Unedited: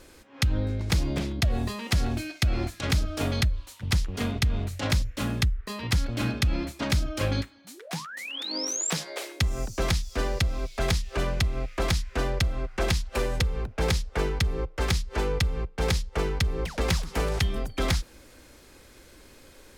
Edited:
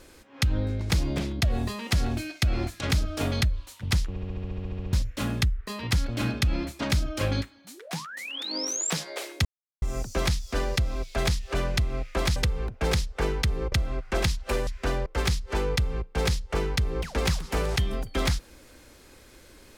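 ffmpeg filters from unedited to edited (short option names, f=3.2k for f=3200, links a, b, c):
-filter_complex "[0:a]asplit=18[a][b][c][d][e][f][g][h][i][j][k][l][m][n][o][p][q][r];[a]atrim=end=4.162[s];[b]atrim=start=4.088:end=4.162[t];[c]atrim=start=4.088:end=4.162[u];[d]atrim=start=4.088:end=4.162[v];[e]atrim=start=4.088:end=4.162[w];[f]atrim=start=4.088:end=4.162[x];[g]atrim=start=4.088:end=4.162[y];[h]atrim=start=4.088:end=4.162[z];[i]atrim=start=4.088:end=4.162[aa];[j]atrim=start=4.088:end=4.162[ab];[k]atrim=start=4.088:end=4.162[ac];[l]atrim=start=4.088:end=4.162[ad];[m]atrim=start=4.928:end=9.45,asetpts=PTS-STARTPTS,afade=t=out:st=4.518:d=0.004:c=hsin,apad=pad_dur=0.37[ae];[n]atrim=start=9.45:end=11.992,asetpts=PTS-STARTPTS,afade=t=in:d=0.004:c=hsin[af];[o]atrim=start=13.328:end=14.692[ag];[p]atrim=start=12.378:end=13.332[ah];[q]atrim=start=11.988:end=12.382[ai];[r]atrim=start=14.688[aj];[s][t]acrossfade=d=0.004:c1=hsin:c2=hsin[ak];[ak][u]acrossfade=d=0.004:c1=hsin:c2=hsin[al];[al][v]acrossfade=d=0.004:c1=hsin:c2=hsin[am];[am][w]acrossfade=d=0.004:c1=hsin:c2=hsin[an];[an][x]acrossfade=d=0.004:c1=hsin:c2=hsin[ao];[ao][y]acrossfade=d=0.004:c1=hsin:c2=hsin[ap];[ap][z]acrossfade=d=0.004:c1=hsin:c2=hsin[aq];[aq][aa]acrossfade=d=0.004:c1=hsin:c2=hsin[ar];[ar][ab]acrossfade=d=0.004:c1=hsin:c2=hsin[as];[as][ac]acrossfade=d=0.004:c1=hsin:c2=hsin[at];[at][ad]acrossfade=d=0.004:c1=hsin:c2=hsin[au];[ae][af]concat=n=2:v=0:a=1[av];[au][av]acrossfade=d=0.004:c1=hsin:c2=hsin[aw];[aw][ag]acrossfade=d=0.004:c1=hsin:c2=hsin[ax];[ax][ah]acrossfade=d=0.004:c1=hsin:c2=hsin[ay];[ay][ai]acrossfade=d=0.004:c1=hsin:c2=hsin[az];[az][aj]acrossfade=d=0.004:c1=hsin:c2=hsin"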